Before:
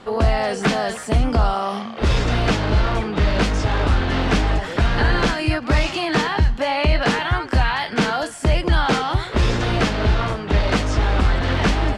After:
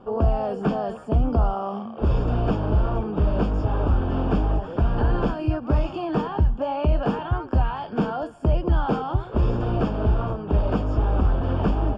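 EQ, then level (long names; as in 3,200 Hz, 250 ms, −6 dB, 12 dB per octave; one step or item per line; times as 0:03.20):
moving average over 22 samples
−2.5 dB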